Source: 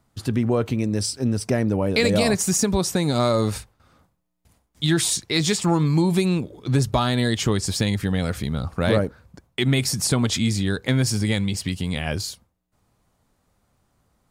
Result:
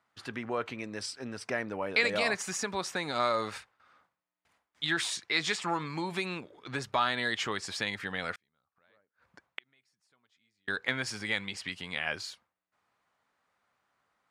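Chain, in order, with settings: 8.33–10.68 s: inverted gate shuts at -26 dBFS, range -39 dB; band-pass filter 1.7 kHz, Q 1.1

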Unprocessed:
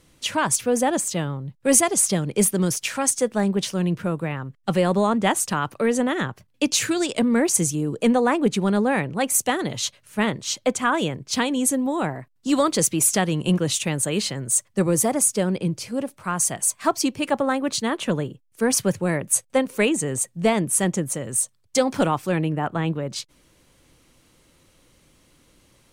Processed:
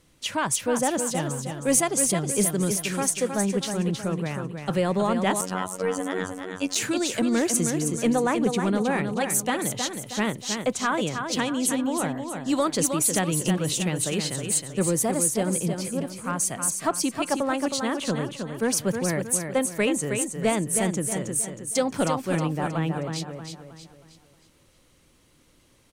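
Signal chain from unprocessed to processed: on a send: feedback delay 316 ms, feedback 41%, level -6.5 dB; 5.41–6.76 s: on the sum: robot voice 92.9 Hz; saturation -5.5 dBFS, distortion -28 dB; trim -3.5 dB

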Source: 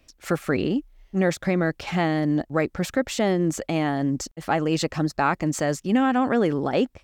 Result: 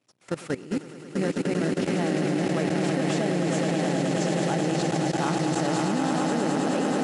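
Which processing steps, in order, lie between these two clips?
jump at every zero crossing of -30 dBFS; on a send: echo with a slow build-up 106 ms, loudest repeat 8, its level -6 dB; on the sum: expander -26 dBFS; in parallel at -6 dB: sample-rate reducer 2.3 kHz; on the sum: FFT band-pass 100–11000 Hz; level held to a coarse grid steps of 17 dB; trim -7.5 dB

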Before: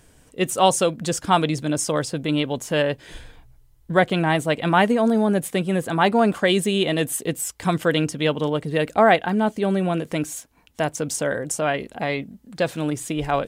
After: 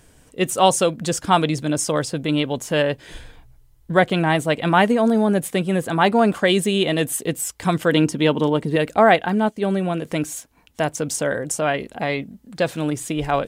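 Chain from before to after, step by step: 7.92–8.76 s: small resonant body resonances 230/340/930 Hz, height 8 dB; 9.38–10.02 s: upward expansion 1.5:1, over -39 dBFS; trim +1.5 dB

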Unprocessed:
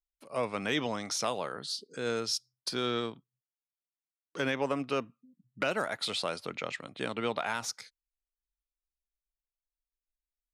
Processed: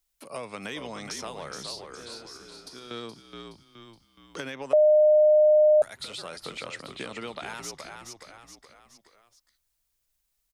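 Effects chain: treble shelf 4.1 kHz +7.5 dB; compression 4:1, threshold -34 dBFS, peak gain reduction 9.5 dB; 1.95–2.91 s: feedback comb 87 Hz, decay 1.7 s, harmonics all, mix 80%; frequency-shifting echo 421 ms, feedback 35%, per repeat -57 Hz, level -7.5 dB; 4.73–5.82 s: bleep 609 Hz -7.5 dBFS; three bands compressed up and down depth 40%

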